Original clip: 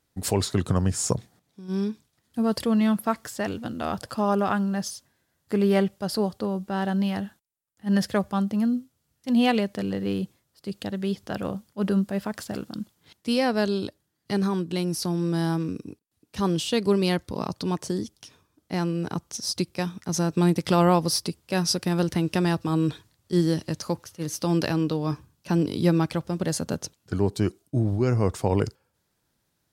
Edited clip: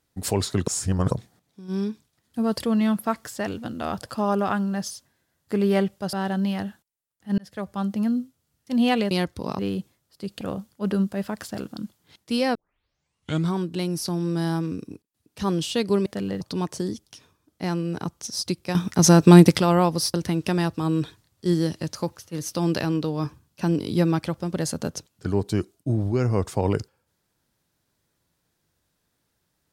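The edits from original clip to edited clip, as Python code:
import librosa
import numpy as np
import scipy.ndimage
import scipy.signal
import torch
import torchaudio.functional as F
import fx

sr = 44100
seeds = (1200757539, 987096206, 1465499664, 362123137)

y = fx.edit(x, sr, fx.reverse_span(start_s=0.67, length_s=0.44),
    fx.cut(start_s=6.13, length_s=0.57),
    fx.fade_in_span(start_s=7.95, length_s=0.56),
    fx.swap(start_s=9.68, length_s=0.35, other_s=17.03, other_length_s=0.48),
    fx.cut(start_s=10.85, length_s=0.53),
    fx.tape_start(start_s=13.52, length_s=1.03),
    fx.clip_gain(start_s=19.85, length_s=0.83, db=10.5),
    fx.cut(start_s=21.24, length_s=0.77), tone=tone)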